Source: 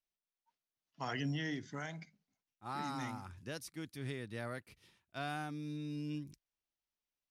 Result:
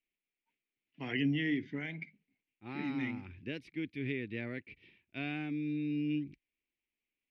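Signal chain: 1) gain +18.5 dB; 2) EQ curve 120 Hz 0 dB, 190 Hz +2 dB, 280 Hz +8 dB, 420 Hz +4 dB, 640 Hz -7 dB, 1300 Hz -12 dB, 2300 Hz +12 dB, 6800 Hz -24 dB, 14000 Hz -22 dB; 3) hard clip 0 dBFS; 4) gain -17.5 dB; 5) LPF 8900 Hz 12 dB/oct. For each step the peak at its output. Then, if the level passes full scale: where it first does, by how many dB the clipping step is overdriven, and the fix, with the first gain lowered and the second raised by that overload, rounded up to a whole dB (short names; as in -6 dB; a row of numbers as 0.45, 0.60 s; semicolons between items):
-8.5, -4.5, -4.5, -22.0, -22.0 dBFS; no overload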